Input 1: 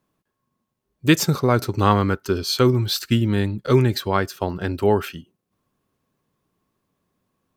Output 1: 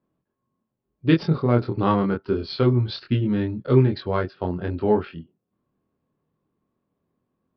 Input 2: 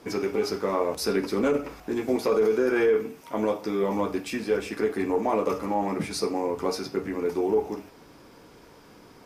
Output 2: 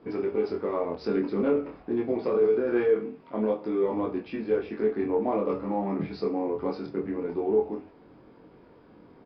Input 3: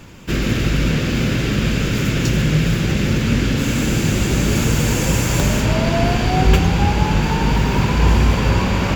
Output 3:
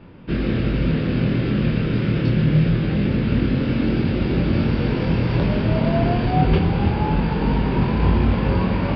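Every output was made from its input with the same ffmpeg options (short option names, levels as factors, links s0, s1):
-af "lowshelf=f=110:g=-8,adynamicsmooth=sensitivity=2:basefreq=3600,flanger=delay=22.5:depth=3.1:speed=0.24,tiltshelf=f=700:g=5,aresample=11025,aresample=44100"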